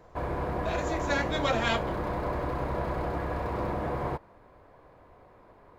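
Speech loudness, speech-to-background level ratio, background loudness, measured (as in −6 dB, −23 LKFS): −31.5 LKFS, 1.0 dB, −32.5 LKFS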